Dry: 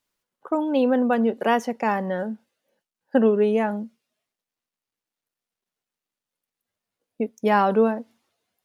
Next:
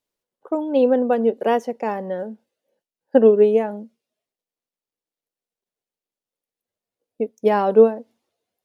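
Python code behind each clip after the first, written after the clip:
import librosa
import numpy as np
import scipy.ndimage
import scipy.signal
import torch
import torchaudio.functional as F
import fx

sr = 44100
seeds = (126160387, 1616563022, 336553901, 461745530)

y = fx.curve_eq(x, sr, hz=(220.0, 470.0, 1300.0, 3600.0), db=(0, 7, -4, -1))
y = fx.upward_expand(y, sr, threshold_db=-22.0, expansion=1.5)
y = F.gain(torch.from_numpy(y), 2.0).numpy()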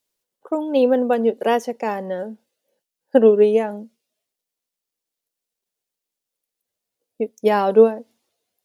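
y = fx.high_shelf(x, sr, hz=2800.0, db=9.0)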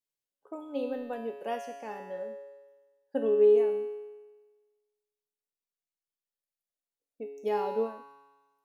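y = fx.comb_fb(x, sr, f0_hz=140.0, decay_s=1.3, harmonics='all', damping=0.0, mix_pct=90)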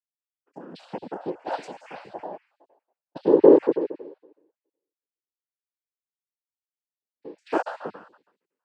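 y = fx.spec_dropout(x, sr, seeds[0], share_pct=51)
y = fx.noise_vocoder(y, sr, seeds[1], bands=8)
y = fx.band_widen(y, sr, depth_pct=40)
y = F.gain(torch.from_numpy(y), 5.0).numpy()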